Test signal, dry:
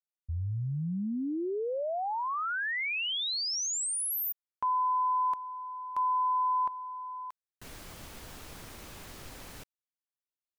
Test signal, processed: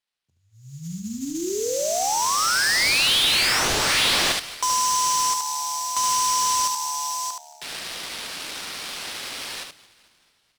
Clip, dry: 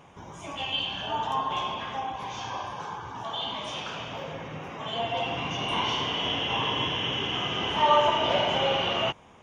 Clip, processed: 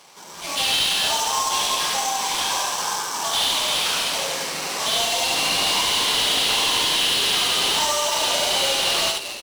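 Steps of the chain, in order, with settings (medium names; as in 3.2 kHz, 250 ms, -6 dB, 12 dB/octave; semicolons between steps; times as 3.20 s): bass shelf 240 Hz -12 dB; hum notches 50/100/150/200/250/300 Hz; level rider gain up to 7.5 dB; Chebyshev high-pass 150 Hz, order 4; frequency-shifting echo 221 ms, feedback 59%, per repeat -74 Hz, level -21 dB; sample-rate reducer 6.9 kHz, jitter 20%; compression 6:1, threshold -24 dBFS; peaking EQ 5.9 kHz +15 dB 2.7 oct; delay 73 ms -5 dB; slew-rate limiter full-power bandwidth 530 Hz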